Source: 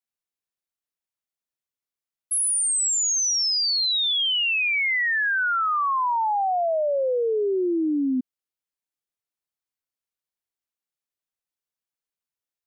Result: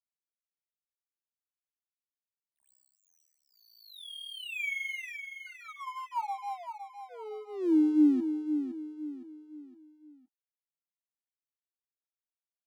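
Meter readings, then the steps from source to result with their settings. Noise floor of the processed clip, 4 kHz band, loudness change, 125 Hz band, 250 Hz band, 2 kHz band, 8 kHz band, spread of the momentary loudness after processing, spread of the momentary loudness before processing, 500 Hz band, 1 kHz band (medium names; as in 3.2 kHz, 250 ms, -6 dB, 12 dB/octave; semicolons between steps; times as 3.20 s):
under -85 dBFS, -22.5 dB, -10.5 dB, no reading, 0.0 dB, -15.5 dB, under -35 dB, 21 LU, 4 LU, -15.5 dB, -14.5 dB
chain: rotary cabinet horn 0.65 Hz, later 6.3 Hz, at 4.83 s; flange 0.17 Hz, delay 9.2 ms, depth 8 ms, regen -41%; wow and flutter 110 cents; vowel filter u; crossover distortion -57.5 dBFS; on a send: feedback delay 513 ms, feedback 39%, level -8.5 dB; on the sum: trim +7.5 dB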